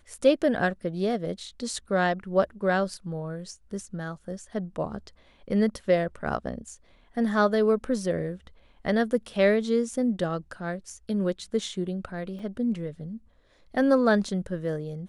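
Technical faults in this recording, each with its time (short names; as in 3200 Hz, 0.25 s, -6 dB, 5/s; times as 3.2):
12.39 gap 4.5 ms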